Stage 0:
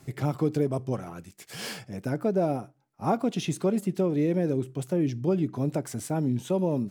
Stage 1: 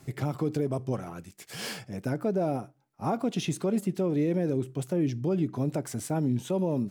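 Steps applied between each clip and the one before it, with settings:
brickwall limiter −18.5 dBFS, peak gain reduction 5.5 dB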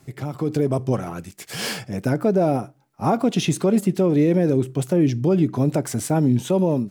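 automatic gain control gain up to 9 dB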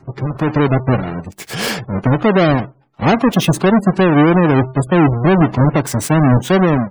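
each half-wave held at its own peak
gate on every frequency bin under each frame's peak −25 dB strong
level +3.5 dB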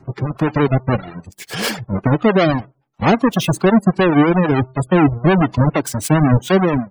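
reverb reduction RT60 1.5 s
two-band tremolo in antiphase 9.3 Hz, depth 50%, crossover 560 Hz
level +2 dB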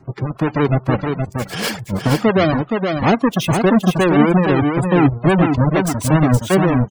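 single-tap delay 470 ms −5 dB
level −1 dB

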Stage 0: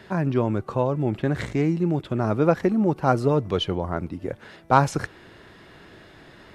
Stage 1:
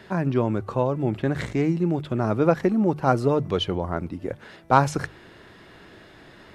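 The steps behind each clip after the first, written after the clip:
mains-hum notches 50/100/150 Hz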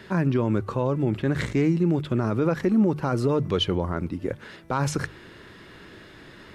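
parametric band 720 Hz −7 dB 0.57 octaves
brickwall limiter −15.5 dBFS, peak gain reduction 11 dB
level +2.5 dB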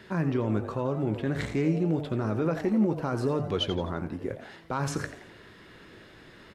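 double-tracking delay 19 ms −12.5 dB
on a send: echo with shifted repeats 85 ms, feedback 43%, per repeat +140 Hz, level −12 dB
on the sum: level −5 dB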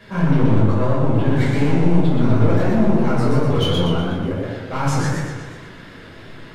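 hard clipping −24 dBFS, distortion −12 dB
rectangular room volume 400 cubic metres, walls furnished, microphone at 5.5 metres
feedback echo with a swinging delay time 122 ms, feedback 55%, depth 129 cents, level −3 dB
level −1 dB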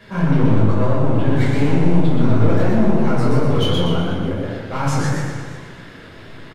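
repeating echo 156 ms, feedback 51%, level −12 dB

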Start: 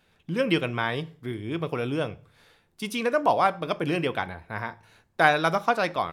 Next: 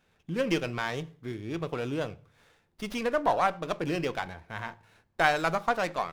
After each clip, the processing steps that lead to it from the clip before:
windowed peak hold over 5 samples
level −3.5 dB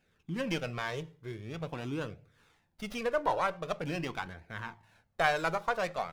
flanger 0.45 Hz, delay 0.4 ms, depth 1.8 ms, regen −34%

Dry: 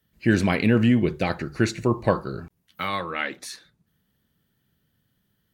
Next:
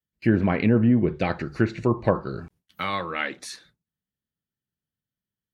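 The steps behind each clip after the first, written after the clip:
noise gate with hold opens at −45 dBFS
treble cut that deepens with the level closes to 1,100 Hz, closed at −15 dBFS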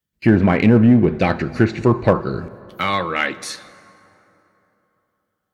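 in parallel at −3 dB: gain into a clipping stage and back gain 16.5 dB
on the sum: dense smooth reverb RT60 3.4 s, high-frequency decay 0.55×, DRR 17 dB
level +3 dB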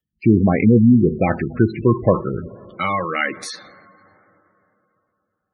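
gate on every frequency bin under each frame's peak −15 dB strong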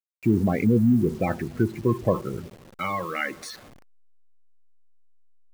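hold until the input has moved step −35 dBFS
level −7 dB

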